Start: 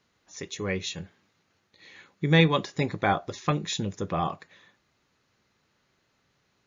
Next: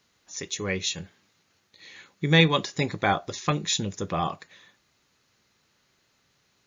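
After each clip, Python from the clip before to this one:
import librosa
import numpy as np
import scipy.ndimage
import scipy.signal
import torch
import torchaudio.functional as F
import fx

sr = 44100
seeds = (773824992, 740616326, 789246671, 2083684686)

y = fx.high_shelf(x, sr, hz=3200.0, db=9.0)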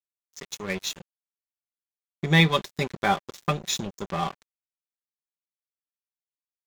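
y = x + 0.52 * np.pad(x, (int(5.1 * sr / 1000.0), 0))[:len(x)]
y = np.sign(y) * np.maximum(np.abs(y) - 10.0 ** (-32.5 / 20.0), 0.0)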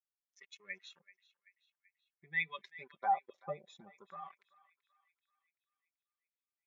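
y = fx.spec_expand(x, sr, power=2.0)
y = fx.wah_lfo(y, sr, hz=0.5, low_hz=550.0, high_hz=2300.0, q=3.7)
y = fx.echo_banded(y, sr, ms=384, feedback_pct=60, hz=2600.0, wet_db=-17.5)
y = F.gain(torch.from_numpy(y), -4.0).numpy()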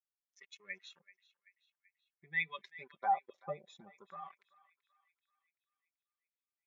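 y = x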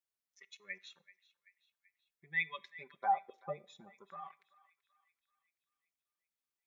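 y = fx.rev_plate(x, sr, seeds[0], rt60_s=0.53, hf_ratio=0.85, predelay_ms=0, drr_db=19.0)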